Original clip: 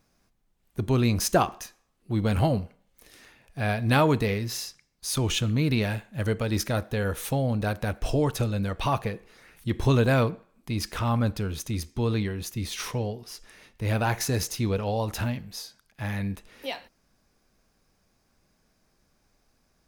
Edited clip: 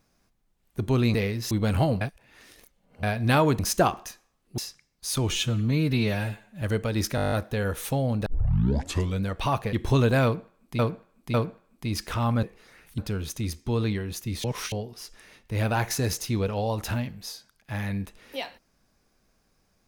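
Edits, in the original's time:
1.14–2.13 swap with 4.21–4.58
2.63–3.65 reverse
5.3–6.18 stretch 1.5×
6.72 stutter 0.02 s, 9 plays
7.66 tape start 0.97 s
9.13–9.68 move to 11.28
10.19–10.74 loop, 3 plays
12.74–13.02 reverse

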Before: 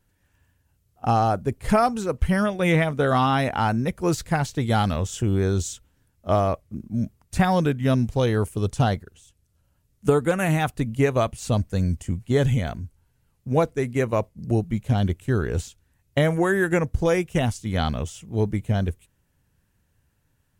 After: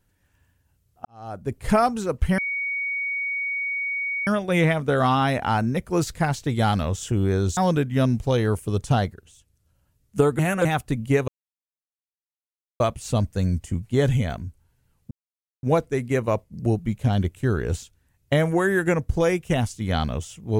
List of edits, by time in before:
1.05–1.57 fade in quadratic
2.38 add tone 2240 Hz -24 dBFS 1.89 s
5.68–7.46 cut
10.28–10.54 reverse
11.17 insert silence 1.52 s
13.48 insert silence 0.52 s

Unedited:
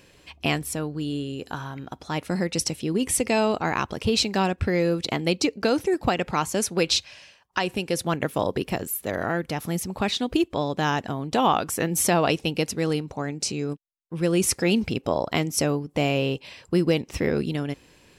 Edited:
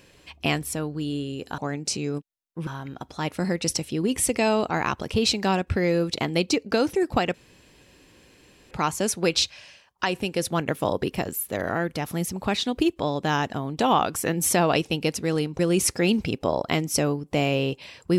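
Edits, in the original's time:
6.25 insert room tone 1.37 s
13.13–14.22 move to 1.58

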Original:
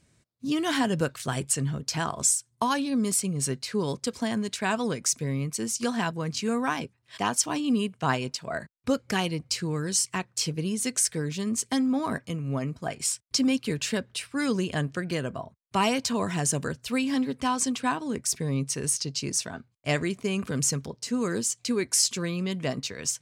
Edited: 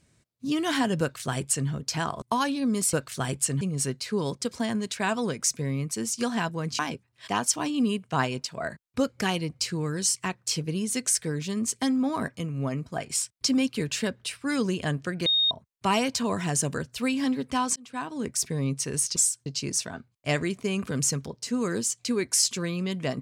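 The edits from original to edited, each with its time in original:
1.01–1.69 copy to 3.23
2.22–2.52 move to 19.06
6.41–6.69 cut
15.16–15.41 bleep 3710 Hz -19.5 dBFS
17.66–18.16 fade in

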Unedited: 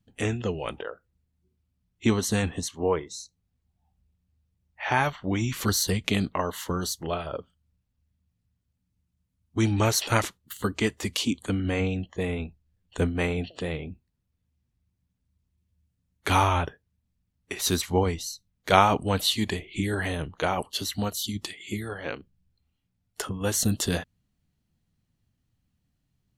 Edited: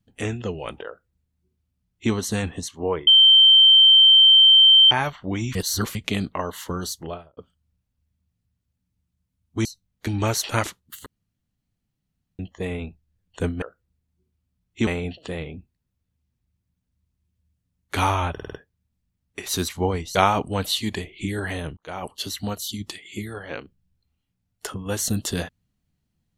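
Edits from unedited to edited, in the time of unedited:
0.87–2.12 copy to 13.2
3.07–4.91 bleep 3120 Hz -9 dBFS
5.55–5.95 reverse
6.98–7.37 studio fade out
10.64–11.97 room tone
16.65 stutter 0.05 s, 5 plays
18.28–18.7 move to 9.65
20.32–20.71 fade in

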